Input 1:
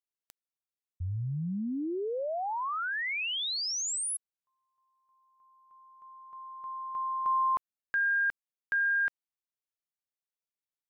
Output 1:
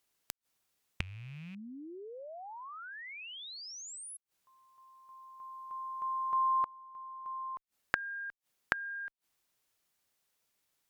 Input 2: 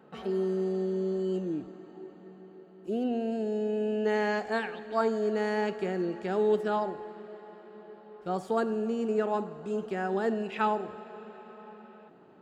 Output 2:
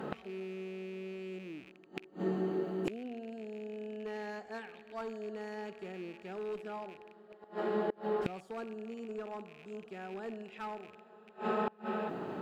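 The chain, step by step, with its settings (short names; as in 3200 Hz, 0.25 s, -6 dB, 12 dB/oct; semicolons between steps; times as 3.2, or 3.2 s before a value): rattling part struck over -48 dBFS, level -31 dBFS; one-sided clip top -22.5 dBFS; flipped gate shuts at -37 dBFS, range -29 dB; gain +16 dB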